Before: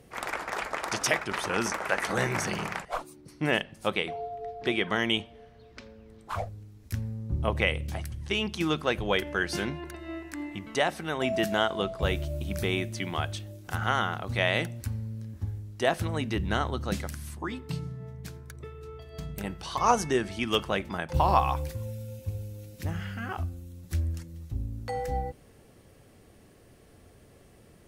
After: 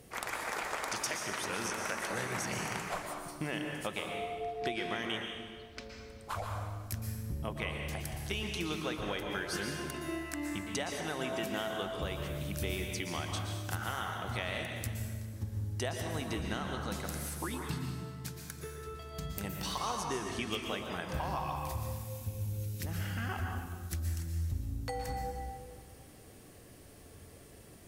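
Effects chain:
high-shelf EQ 4,700 Hz +8 dB
downward compressor 6 to 1, threshold −33 dBFS, peak gain reduction 16 dB
dense smooth reverb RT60 1.6 s, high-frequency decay 0.8×, pre-delay 105 ms, DRR 1.5 dB
level −1.5 dB

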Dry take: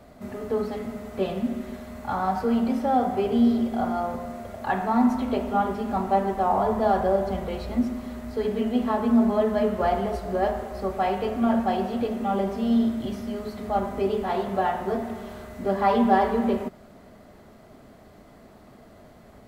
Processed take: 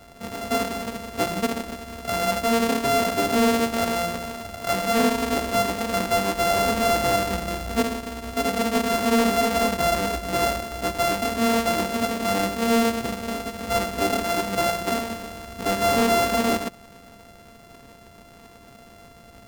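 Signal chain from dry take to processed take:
samples sorted by size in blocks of 64 samples
hard clipping −18 dBFS, distortion −15 dB
level +2 dB

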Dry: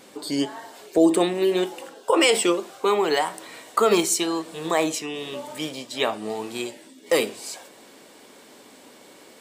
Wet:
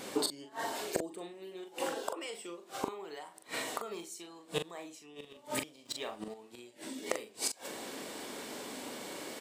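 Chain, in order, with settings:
gate with flip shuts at −24 dBFS, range −29 dB
double-tracking delay 41 ms −7 dB
0:05.85–0:06.34: leveller curve on the samples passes 2
level +4.5 dB

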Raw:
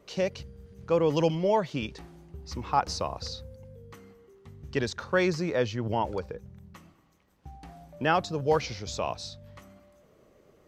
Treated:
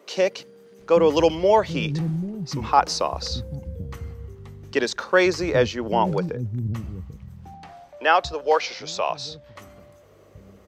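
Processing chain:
0:07.54–0:09.56: three-way crossover with the lows and the highs turned down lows −18 dB, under 420 Hz, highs −12 dB, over 6,400 Hz
multiband delay without the direct sound highs, lows 790 ms, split 230 Hz
level +8 dB

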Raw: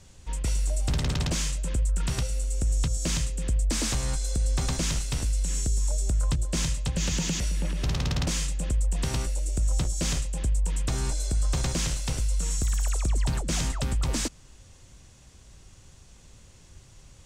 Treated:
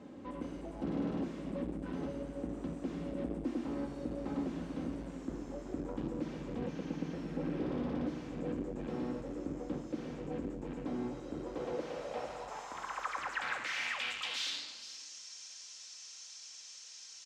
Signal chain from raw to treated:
source passing by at 0:05.22, 24 m/s, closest 3.4 metres
reversed playback
downward compressor, threshold −49 dBFS, peak gain reduction 22.5 dB
reversed playback
rectangular room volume 3,600 cubic metres, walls furnished, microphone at 2.1 metres
mid-hump overdrive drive 43 dB, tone 2,900 Hz, clips at −36 dBFS
on a send: single-tap delay 463 ms −16.5 dB
on the sum: band-pass filter sweep 290 Hz → 5,600 Hz, 0:11.25–0:15.07
level +18 dB

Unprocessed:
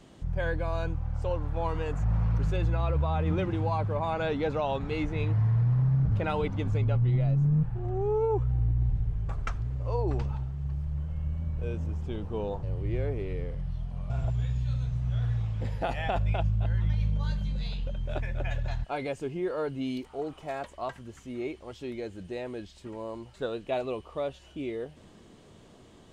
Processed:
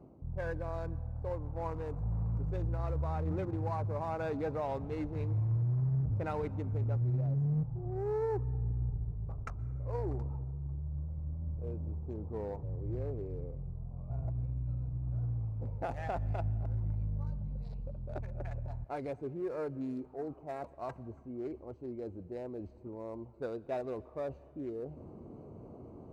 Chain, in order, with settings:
adaptive Wiener filter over 25 samples
parametric band 190 Hz −6.5 dB 0.22 octaves
in parallel at −8 dB: gain into a clipping stage and back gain 29.5 dB
on the sum: high-pass filter 55 Hz
parametric band 3,200 Hz −13 dB 0.63 octaves
reversed playback
upward compression, threshold −30 dBFS
reversed playback
dense smooth reverb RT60 2.2 s, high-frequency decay 0.9×, pre-delay 110 ms, DRR 19.5 dB
one half of a high-frequency compander decoder only
level −7.5 dB

